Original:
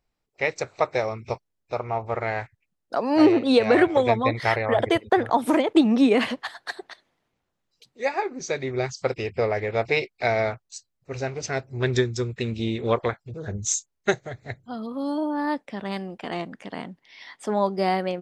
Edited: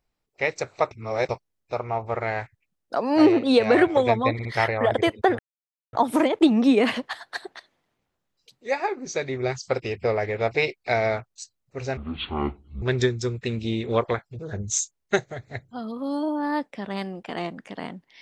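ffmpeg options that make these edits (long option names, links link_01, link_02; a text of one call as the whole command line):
ffmpeg -i in.wav -filter_complex "[0:a]asplit=8[link_01][link_02][link_03][link_04][link_05][link_06][link_07][link_08];[link_01]atrim=end=0.912[link_09];[link_02]atrim=start=0.908:end=1.292,asetpts=PTS-STARTPTS,areverse[link_10];[link_03]atrim=start=1.288:end=4.392[link_11];[link_04]atrim=start=4.328:end=4.392[link_12];[link_05]atrim=start=4.328:end=5.27,asetpts=PTS-STARTPTS,afade=type=out:start_time=0.938:duration=0.004:curve=hsin,apad=pad_dur=0.54[link_13];[link_06]atrim=start=5.27:end=11.314,asetpts=PTS-STARTPTS,afade=type=in:duration=0.004:curve=hsin[link_14];[link_07]atrim=start=11.31:end=11.77,asetpts=PTS-STARTPTS,asetrate=23814,aresample=44100[link_15];[link_08]atrim=start=11.766[link_16];[link_09][link_10]acrossfade=duration=0.004:curve1=hsin:curve2=hsin[link_17];[link_17][link_11]acrossfade=duration=0.004:curve1=hsin:curve2=hsin[link_18];[link_18][link_12]acrossfade=duration=0.004:curve1=hsin:curve2=hsin[link_19];[link_13][link_14]concat=n=2:v=0:a=1[link_20];[link_19][link_20]acrossfade=duration=0.004:curve1=hsin:curve2=hsin[link_21];[link_21][link_15]acrossfade=duration=0.004:curve1=hsin:curve2=hsin[link_22];[link_22][link_16]acrossfade=duration=0.004:curve1=hsin:curve2=hsin" out.wav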